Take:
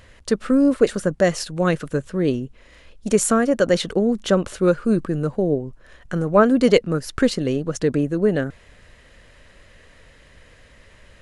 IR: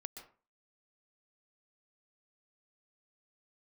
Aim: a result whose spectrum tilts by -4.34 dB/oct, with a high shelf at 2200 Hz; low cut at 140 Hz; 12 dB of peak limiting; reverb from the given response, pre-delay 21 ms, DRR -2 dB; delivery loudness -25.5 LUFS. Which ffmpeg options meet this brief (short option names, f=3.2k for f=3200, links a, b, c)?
-filter_complex "[0:a]highpass=140,highshelf=f=2.2k:g=8.5,alimiter=limit=-11.5dB:level=0:latency=1,asplit=2[a][b];[1:a]atrim=start_sample=2205,adelay=21[c];[b][c]afir=irnorm=-1:irlink=0,volume=6dB[d];[a][d]amix=inputs=2:normalize=0,volume=-7dB"